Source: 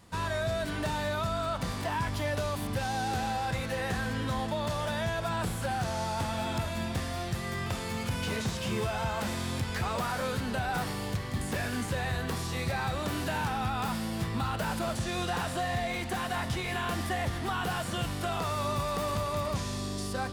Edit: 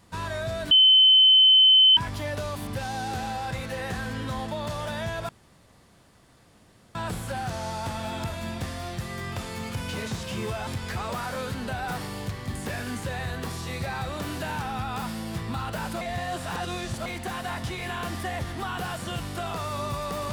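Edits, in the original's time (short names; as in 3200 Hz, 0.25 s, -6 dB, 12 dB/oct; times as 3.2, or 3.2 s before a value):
0.71–1.97 bleep 3060 Hz -12.5 dBFS
5.29 insert room tone 1.66 s
9.01–9.53 cut
14.87–15.92 reverse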